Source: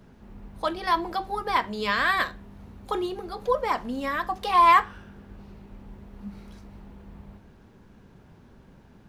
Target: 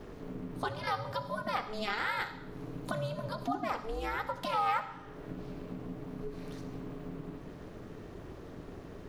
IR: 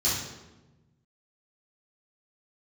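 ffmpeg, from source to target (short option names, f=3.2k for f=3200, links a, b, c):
-filter_complex "[0:a]acompressor=threshold=-45dB:ratio=2.5,aeval=exprs='val(0)*sin(2*PI*220*n/s)':c=same,asplit=2[a][b];[1:a]atrim=start_sample=2205,adelay=63[c];[b][c]afir=irnorm=-1:irlink=0,volume=-23dB[d];[a][d]amix=inputs=2:normalize=0,volume=8.5dB"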